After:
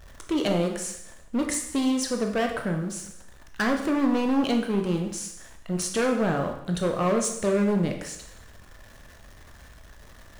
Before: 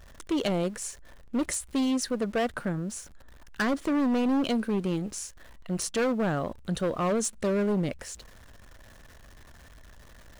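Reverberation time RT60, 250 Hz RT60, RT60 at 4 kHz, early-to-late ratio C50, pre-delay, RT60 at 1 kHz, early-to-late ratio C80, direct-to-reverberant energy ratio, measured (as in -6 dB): 0.80 s, 0.65 s, 0.75 s, 7.0 dB, 15 ms, 0.80 s, 9.5 dB, 3.0 dB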